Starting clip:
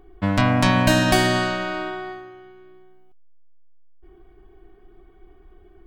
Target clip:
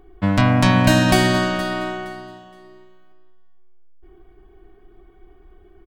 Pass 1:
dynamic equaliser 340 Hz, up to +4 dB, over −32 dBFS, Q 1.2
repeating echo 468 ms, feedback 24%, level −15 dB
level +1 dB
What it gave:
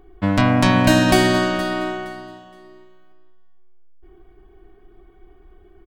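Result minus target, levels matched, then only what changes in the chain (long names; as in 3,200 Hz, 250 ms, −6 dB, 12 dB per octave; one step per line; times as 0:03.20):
125 Hz band −2.5 dB
change: dynamic equaliser 150 Hz, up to +4 dB, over −32 dBFS, Q 1.2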